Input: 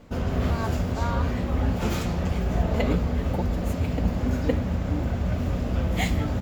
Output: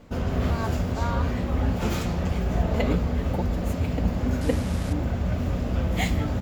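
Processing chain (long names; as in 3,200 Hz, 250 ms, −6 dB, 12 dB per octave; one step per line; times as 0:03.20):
0:04.41–0:04.93: linear delta modulator 64 kbit/s, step −32.5 dBFS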